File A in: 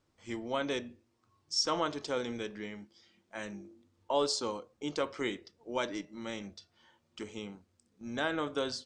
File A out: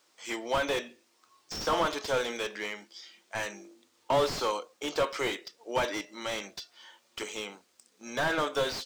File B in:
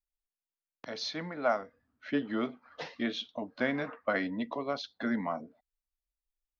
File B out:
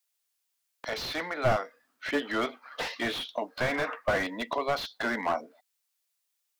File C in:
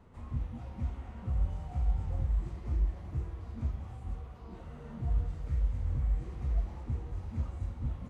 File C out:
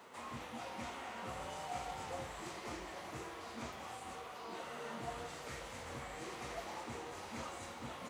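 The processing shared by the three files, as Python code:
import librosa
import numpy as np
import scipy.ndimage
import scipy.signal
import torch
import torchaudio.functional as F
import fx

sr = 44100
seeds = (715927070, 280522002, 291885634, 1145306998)

y = scipy.signal.sosfilt(scipy.signal.butter(2, 460.0, 'highpass', fs=sr, output='sos'), x)
y = fx.high_shelf(y, sr, hz=2000.0, db=9.5)
y = fx.slew_limit(y, sr, full_power_hz=29.0)
y = y * librosa.db_to_amplitude(7.5)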